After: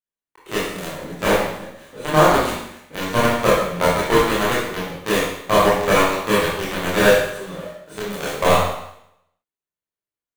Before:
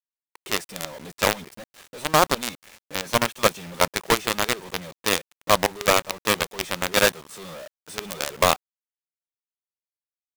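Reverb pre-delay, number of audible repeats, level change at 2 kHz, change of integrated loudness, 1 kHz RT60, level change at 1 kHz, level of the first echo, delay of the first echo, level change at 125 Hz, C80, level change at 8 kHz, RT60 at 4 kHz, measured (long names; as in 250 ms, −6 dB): 21 ms, no echo audible, +4.0 dB, +4.5 dB, 0.75 s, +5.0 dB, no echo audible, no echo audible, +8.5 dB, 3.5 dB, −2.0 dB, 0.75 s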